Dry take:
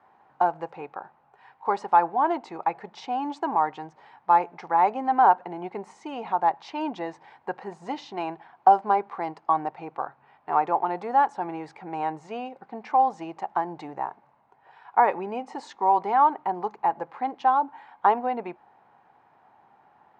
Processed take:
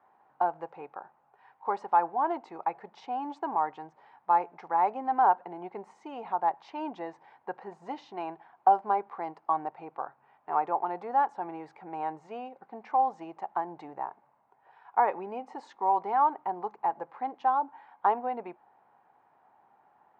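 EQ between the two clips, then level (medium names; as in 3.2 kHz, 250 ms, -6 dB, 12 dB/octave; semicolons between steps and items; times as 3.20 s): bass shelf 180 Hz -3.5 dB; bass shelf 380 Hz -6 dB; treble shelf 2.1 kHz -11.5 dB; -2.0 dB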